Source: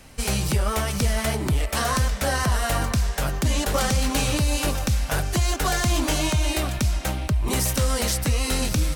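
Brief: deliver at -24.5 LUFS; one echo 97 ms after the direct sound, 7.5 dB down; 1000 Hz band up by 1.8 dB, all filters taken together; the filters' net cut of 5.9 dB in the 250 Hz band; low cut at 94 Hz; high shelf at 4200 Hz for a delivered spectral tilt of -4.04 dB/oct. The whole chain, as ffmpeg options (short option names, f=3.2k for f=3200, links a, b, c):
-af "highpass=94,equalizer=f=250:t=o:g=-8,equalizer=f=1k:t=o:g=3.5,highshelf=f=4.2k:g=-8.5,aecho=1:1:97:0.422,volume=2dB"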